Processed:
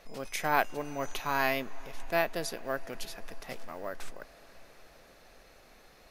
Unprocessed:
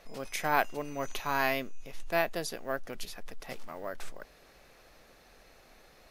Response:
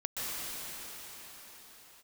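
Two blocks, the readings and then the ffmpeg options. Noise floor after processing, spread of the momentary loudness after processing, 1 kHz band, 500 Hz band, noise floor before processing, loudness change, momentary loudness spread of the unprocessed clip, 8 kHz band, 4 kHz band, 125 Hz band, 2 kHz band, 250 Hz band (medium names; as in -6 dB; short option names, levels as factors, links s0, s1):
-58 dBFS, 17 LU, +0.5 dB, +0.5 dB, -59 dBFS, 0.0 dB, 17 LU, +0.5 dB, +0.5 dB, +0.5 dB, +0.5 dB, +0.5 dB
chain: -filter_complex "[0:a]asplit=2[s0][s1];[1:a]atrim=start_sample=2205,asetrate=26901,aresample=44100[s2];[s1][s2]afir=irnorm=-1:irlink=0,volume=0.0355[s3];[s0][s3]amix=inputs=2:normalize=0"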